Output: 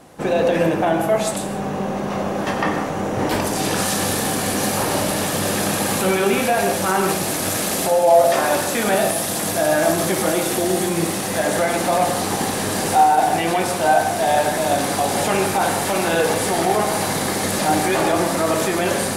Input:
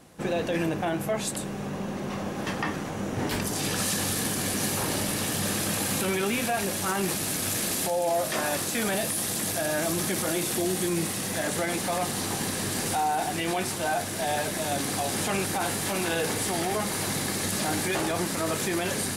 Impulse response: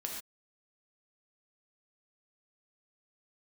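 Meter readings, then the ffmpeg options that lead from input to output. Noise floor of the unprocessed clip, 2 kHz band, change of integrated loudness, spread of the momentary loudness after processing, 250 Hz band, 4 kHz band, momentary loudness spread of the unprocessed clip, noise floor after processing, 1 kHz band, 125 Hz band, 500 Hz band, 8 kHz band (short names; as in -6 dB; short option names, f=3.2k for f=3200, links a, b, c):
-33 dBFS, +7.5 dB, +8.5 dB, 4 LU, +7.5 dB, +5.5 dB, 4 LU, -24 dBFS, +12.0 dB, +6.0 dB, +11.5 dB, +5.0 dB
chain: -filter_complex "[0:a]asplit=2[a][b];[b]equalizer=f=700:w=0.49:g=11.5[c];[1:a]atrim=start_sample=2205,asetrate=35280,aresample=44100[d];[c][d]afir=irnorm=-1:irlink=0,volume=-3dB[e];[a][e]amix=inputs=2:normalize=0"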